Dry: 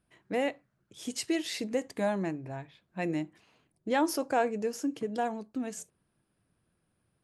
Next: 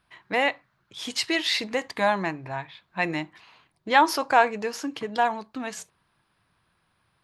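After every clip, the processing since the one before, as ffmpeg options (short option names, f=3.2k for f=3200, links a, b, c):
-af "equalizer=f=250:t=o:w=1:g=-4,equalizer=f=500:t=o:w=1:g=-3,equalizer=f=1k:t=o:w=1:g=11,equalizer=f=2k:t=o:w=1:g=6,equalizer=f=4k:t=o:w=1:g=10,equalizer=f=8k:t=o:w=1:g=-4,volume=3.5dB"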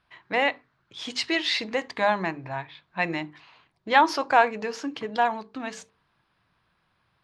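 -af "lowpass=5.6k,bandreject=f=50:t=h:w=6,bandreject=f=100:t=h:w=6,bandreject=f=150:t=h:w=6,bandreject=f=200:t=h:w=6,bandreject=f=250:t=h:w=6,bandreject=f=300:t=h:w=6,bandreject=f=350:t=h:w=6,bandreject=f=400:t=h:w=6,bandreject=f=450:t=h:w=6"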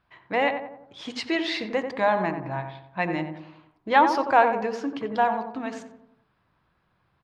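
-filter_complex "[0:a]highshelf=f=2.1k:g=-9.5,asplit=2[a][b];[b]adelay=90,lowpass=f=1.3k:p=1,volume=-6dB,asplit=2[c][d];[d]adelay=90,lowpass=f=1.3k:p=1,volume=0.52,asplit=2[e][f];[f]adelay=90,lowpass=f=1.3k:p=1,volume=0.52,asplit=2[g][h];[h]adelay=90,lowpass=f=1.3k:p=1,volume=0.52,asplit=2[i][j];[j]adelay=90,lowpass=f=1.3k:p=1,volume=0.52,asplit=2[k][l];[l]adelay=90,lowpass=f=1.3k:p=1,volume=0.52[m];[c][e][g][i][k][m]amix=inputs=6:normalize=0[n];[a][n]amix=inputs=2:normalize=0,volume=2dB"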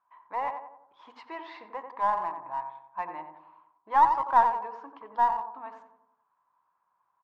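-filter_complex "[0:a]bandpass=f=990:t=q:w=7.9:csg=0,asplit=2[a][b];[b]aeval=exprs='clip(val(0),-1,0.0133)':c=same,volume=-10dB[c];[a][c]amix=inputs=2:normalize=0,volume=3.5dB"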